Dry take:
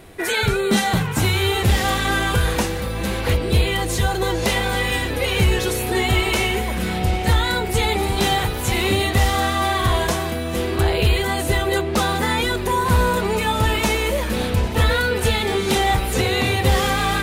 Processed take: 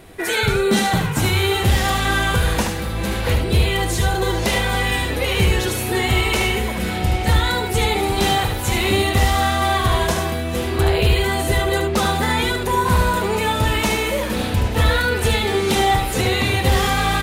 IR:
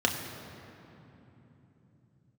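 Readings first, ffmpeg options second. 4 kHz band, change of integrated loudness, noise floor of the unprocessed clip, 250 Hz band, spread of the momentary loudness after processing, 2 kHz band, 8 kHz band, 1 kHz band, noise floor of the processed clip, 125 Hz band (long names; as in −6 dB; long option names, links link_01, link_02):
+1.0 dB, +1.0 dB, −25 dBFS, +0.5 dB, 4 LU, +1.0 dB, +1.0 dB, +1.5 dB, −24 dBFS, +1.0 dB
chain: -af "aecho=1:1:74:0.501"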